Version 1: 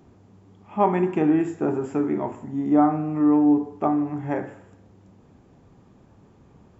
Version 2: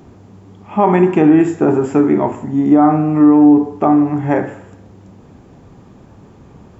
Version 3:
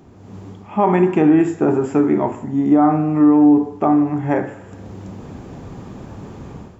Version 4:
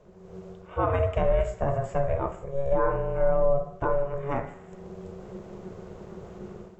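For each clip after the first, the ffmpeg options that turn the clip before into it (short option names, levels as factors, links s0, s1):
-af "alimiter=level_in=4.22:limit=0.891:release=50:level=0:latency=1,volume=0.891"
-af "dynaudnorm=f=120:g=5:m=3.98,volume=0.596"
-af "equalizer=f=86:t=o:w=0.3:g=13.5,aeval=exprs='val(0)*sin(2*PI*280*n/s)':c=same,volume=0.447"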